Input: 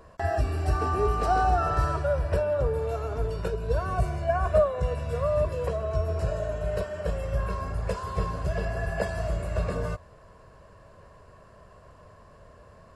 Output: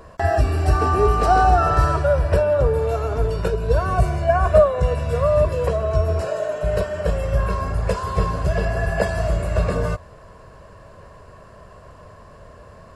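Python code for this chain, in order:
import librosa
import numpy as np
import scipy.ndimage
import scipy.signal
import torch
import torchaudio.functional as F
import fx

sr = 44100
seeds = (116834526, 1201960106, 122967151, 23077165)

y = fx.highpass(x, sr, hz=320.0, slope=12, at=(6.22, 6.63))
y = y * 10.0 ** (8.0 / 20.0)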